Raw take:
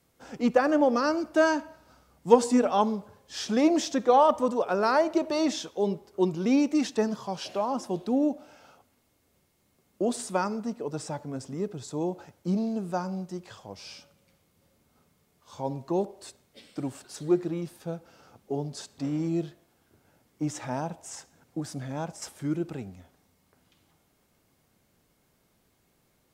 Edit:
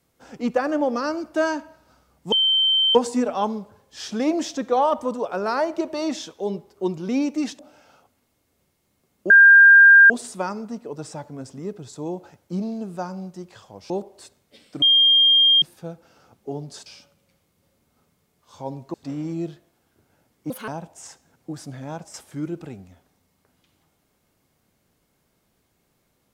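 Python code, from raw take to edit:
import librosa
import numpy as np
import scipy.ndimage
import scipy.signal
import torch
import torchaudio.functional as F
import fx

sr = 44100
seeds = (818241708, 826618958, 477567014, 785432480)

y = fx.edit(x, sr, fx.insert_tone(at_s=2.32, length_s=0.63, hz=3110.0, db=-15.5),
    fx.cut(start_s=6.96, length_s=1.38),
    fx.insert_tone(at_s=10.05, length_s=0.8, hz=1600.0, db=-6.5),
    fx.move(start_s=13.85, length_s=2.08, to_s=18.89),
    fx.bleep(start_s=16.85, length_s=0.8, hz=3210.0, db=-12.0),
    fx.speed_span(start_s=20.45, length_s=0.31, speed=1.72), tone=tone)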